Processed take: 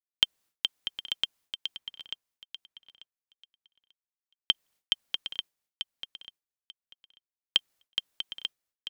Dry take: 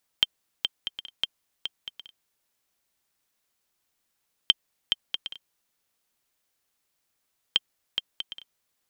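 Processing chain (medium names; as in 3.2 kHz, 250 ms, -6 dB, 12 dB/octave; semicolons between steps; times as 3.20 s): expander -53 dBFS; 1.76–4.51 s: treble shelf 3.4 kHz -8 dB; feedback delay 890 ms, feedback 18%, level -9 dB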